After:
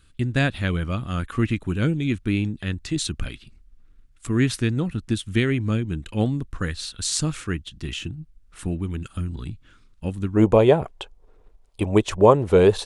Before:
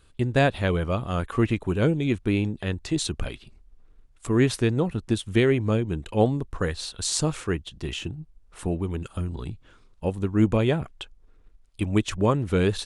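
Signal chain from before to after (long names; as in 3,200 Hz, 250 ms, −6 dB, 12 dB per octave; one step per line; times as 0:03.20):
flat-topped bell 630 Hz −8.5 dB, from 0:10.35 +9 dB
level +1.5 dB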